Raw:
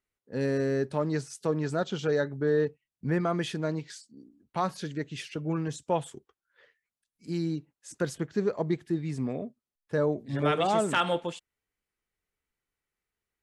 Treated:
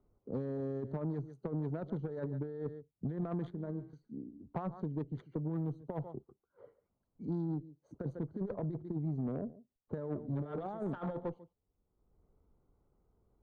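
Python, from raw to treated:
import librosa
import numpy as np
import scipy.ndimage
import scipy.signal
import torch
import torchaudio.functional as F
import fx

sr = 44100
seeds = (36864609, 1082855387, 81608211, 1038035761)

p1 = fx.wiener(x, sr, points=25)
p2 = fx.peak_eq(p1, sr, hz=550.0, db=4.5, octaves=0.67, at=(7.53, 8.15))
p3 = p2 + fx.echo_single(p2, sr, ms=143, db=-21.5, dry=0)
p4 = fx.over_compress(p3, sr, threshold_db=-30.0, ratio=-0.5)
p5 = fx.comb_fb(p4, sr, f0_hz=65.0, decay_s=0.69, harmonics='all', damping=0.0, mix_pct=70, at=(3.5, 3.93))
p6 = fx.resample_bad(p5, sr, factor=3, down='filtered', up='hold', at=(5.55, 6.09))
p7 = np.convolve(p6, np.full(17, 1.0 / 17))[:len(p6)]
p8 = fx.low_shelf(p7, sr, hz=180.0, db=4.5)
p9 = fx.tube_stage(p8, sr, drive_db=24.0, bias=0.3)
p10 = fx.band_squash(p9, sr, depth_pct=70)
y = F.gain(torch.from_numpy(p10), -5.0).numpy()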